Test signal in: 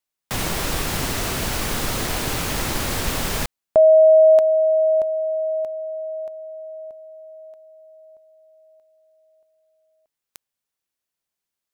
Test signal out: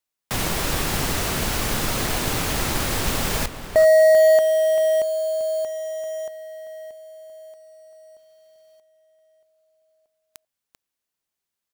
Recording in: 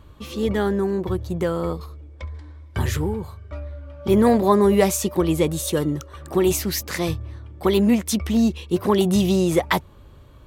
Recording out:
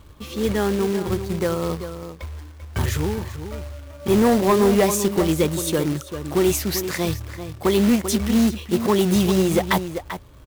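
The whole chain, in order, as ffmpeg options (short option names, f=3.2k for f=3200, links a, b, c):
-filter_complex "[0:a]asplit=2[a][b];[b]adelay=390.7,volume=-10dB,highshelf=f=4k:g=-8.79[c];[a][c]amix=inputs=2:normalize=0,acrusher=bits=3:mode=log:mix=0:aa=0.000001,asoftclip=type=hard:threshold=-11dB"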